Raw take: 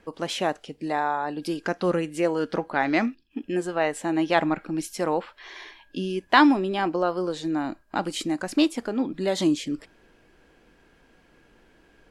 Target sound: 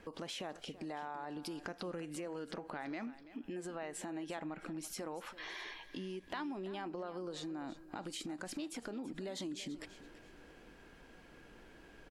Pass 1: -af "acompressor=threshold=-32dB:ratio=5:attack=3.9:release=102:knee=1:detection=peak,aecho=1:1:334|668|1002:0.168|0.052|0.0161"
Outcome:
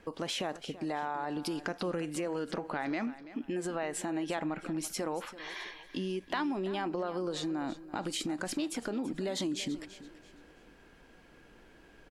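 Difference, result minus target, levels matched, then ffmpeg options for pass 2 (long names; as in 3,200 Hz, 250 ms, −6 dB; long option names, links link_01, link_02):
downward compressor: peak gain reduction −8.5 dB
-af "acompressor=threshold=-42.5dB:ratio=5:attack=3.9:release=102:knee=1:detection=peak,aecho=1:1:334|668|1002:0.168|0.052|0.0161"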